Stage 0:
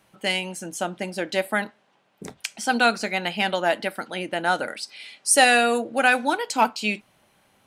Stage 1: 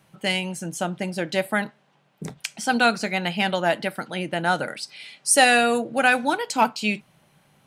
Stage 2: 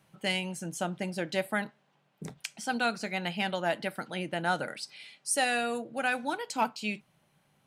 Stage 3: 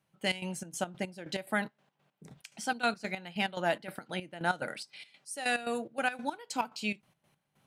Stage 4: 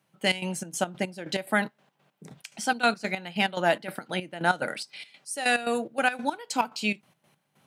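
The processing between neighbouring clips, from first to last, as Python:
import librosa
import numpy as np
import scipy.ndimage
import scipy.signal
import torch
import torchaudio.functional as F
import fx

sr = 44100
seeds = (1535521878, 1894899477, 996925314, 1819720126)

y1 = fx.peak_eq(x, sr, hz=150.0, db=14.5, octaves=0.45)
y2 = fx.rider(y1, sr, range_db=3, speed_s=0.5)
y2 = y2 * librosa.db_to_amplitude(-9.0)
y3 = fx.step_gate(y2, sr, bpm=143, pattern='..x.xx.x.x', floor_db=-12.0, edge_ms=4.5)
y4 = scipy.signal.sosfilt(scipy.signal.butter(2, 130.0, 'highpass', fs=sr, output='sos'), y3)
y4 = y4 * librosa.db_to_amplitude(6.5)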